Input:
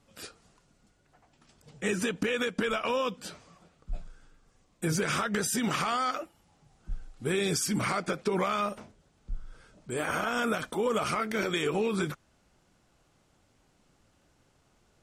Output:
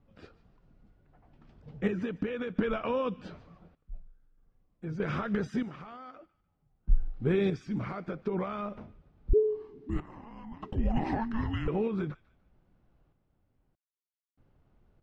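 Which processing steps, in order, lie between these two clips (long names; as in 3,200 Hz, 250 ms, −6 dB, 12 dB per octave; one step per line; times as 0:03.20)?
spectral tilt −2.5 dB per octave
sample-and-hold tremolo 1.6 Hz, depth 100%
0:09.33–0:11.68: frequency shifter −450 Hz
high-frequency loss of the air 220 metres
delay with a high-pass on its return 148 ms, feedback 31%, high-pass 1,600 Hz, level −18 dB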